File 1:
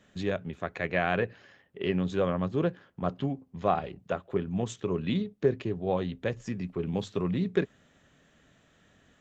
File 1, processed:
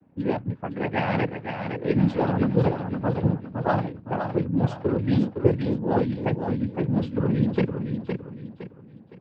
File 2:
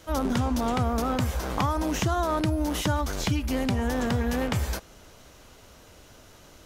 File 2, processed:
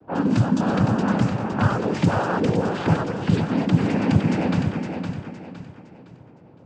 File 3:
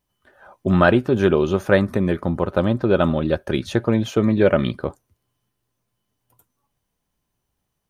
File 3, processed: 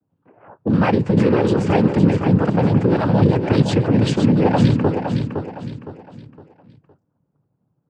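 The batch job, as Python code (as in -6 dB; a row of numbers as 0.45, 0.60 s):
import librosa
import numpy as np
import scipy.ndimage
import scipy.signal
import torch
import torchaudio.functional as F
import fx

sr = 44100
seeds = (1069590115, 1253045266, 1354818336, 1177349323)

p1 = fx.over_compress(x, sr, threshold_db=-22.0, ratio=-0.5)
p2 = x + (p1 * 10.0 ** (2.5 / 20.0))
p3 = fx.noise_vocoder(p2, sr, seeds[0], bands=8)
p4 = fx.env_lowpass(p3, sr, base_hz=730.0, full_db=-12.5)
p5 = fx.low_shelf(p4, sr, hz=270.0, db=10.0)
p6 = fx.notch(p5, sr, hz=4200.0, q=23.0)
p7 = p6 + fx.echo_feedback(p6, sr, ms=512, feedback_pct=35, wet_db=-6.5, dry=0)
y = p7 * 10.0 ** (-6.0 / 20.0)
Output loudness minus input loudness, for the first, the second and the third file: +5.5, +5.0, +2.5 LU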